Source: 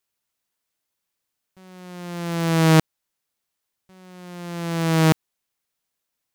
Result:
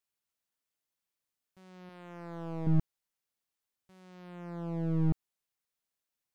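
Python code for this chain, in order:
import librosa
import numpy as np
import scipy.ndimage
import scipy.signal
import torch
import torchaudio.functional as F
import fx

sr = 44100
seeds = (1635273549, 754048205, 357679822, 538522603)

y = fx.low_shelf(x, sr, hz=220.0, db=-11.5, at=(1.89, 2.67))
y = fx.slew_limit(y, sr, full_power_hz=43.0)
y = y * 10.0 ** (-9.0 / 20.0)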